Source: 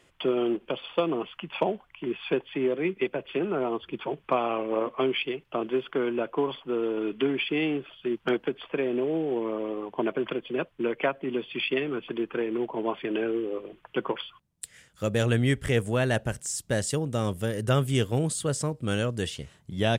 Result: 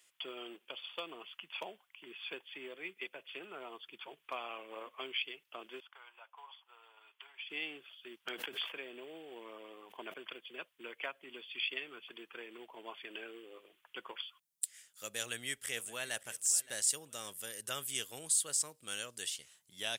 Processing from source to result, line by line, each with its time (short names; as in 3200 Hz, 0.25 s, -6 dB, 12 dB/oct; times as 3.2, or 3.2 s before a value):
5.8–7.5 ladder high-pass 750 Hz, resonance 55%
8.31–10.14 sustainer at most 63 dB/s
15.07–16.21 echo throw 0.57 s, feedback 30%, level -18 dB
whole clip: differentiator; gain +2 dB